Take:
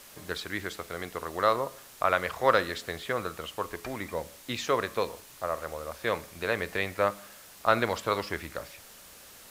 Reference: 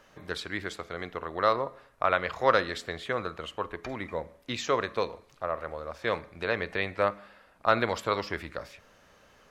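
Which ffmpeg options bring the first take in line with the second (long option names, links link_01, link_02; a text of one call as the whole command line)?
ffmpeg -i in.wav -af "afwtdn=0.0032" out.wav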